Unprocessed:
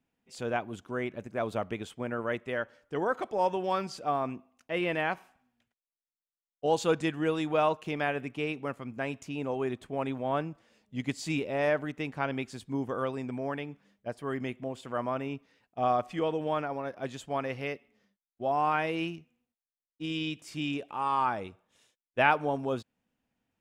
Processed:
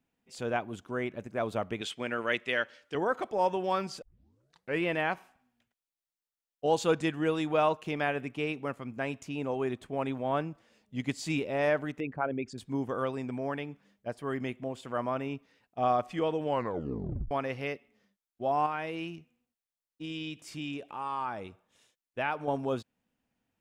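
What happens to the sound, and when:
0:01.81–0:02.95: meter weighting curve D
0:04.02: tape start 0.82 s
0:12.00–0:12.58: spectral envelope exaggerated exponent 2
0:16.45: tape stop 0.86 s
0:18.66–0:22.48: downward compressor 1.5 to 1, threshold −41 dBFS

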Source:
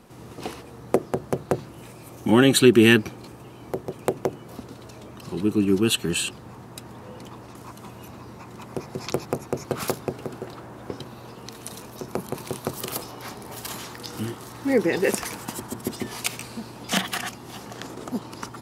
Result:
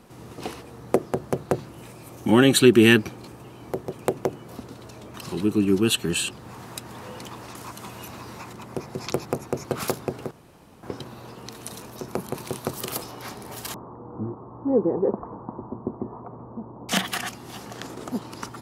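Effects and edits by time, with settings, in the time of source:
0:05.14–0:08.53: one half of a high-frequency compander encoder only
0:10.31–0:10.83: fill with room tone
0:13.74–0:16.89: elliptic low-pass filter 1,100 Hz, stop band 60 dB

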